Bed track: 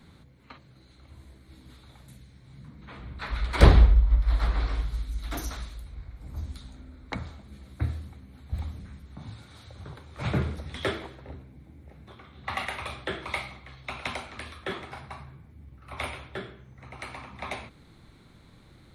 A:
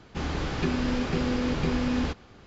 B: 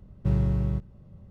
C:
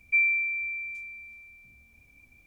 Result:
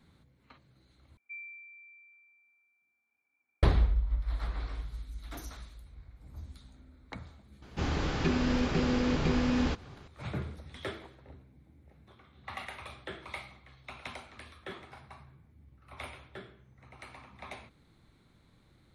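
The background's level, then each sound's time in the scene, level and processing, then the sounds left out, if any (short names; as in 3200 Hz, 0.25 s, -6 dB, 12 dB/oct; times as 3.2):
bed track -9.5 dB
1.17 replace with C -16.5 dB + speaker cabinet 470–2100 Hz, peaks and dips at 560 Hz -8 dB, 830 Hz +4 dB, 1400 Hz +7 dB
7.62 add A -1.5 dB
not used: B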